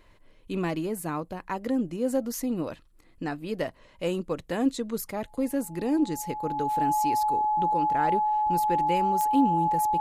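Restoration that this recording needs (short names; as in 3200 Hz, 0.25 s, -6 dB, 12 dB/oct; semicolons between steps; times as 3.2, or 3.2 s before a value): de-click; notch 850 Hz, Q 30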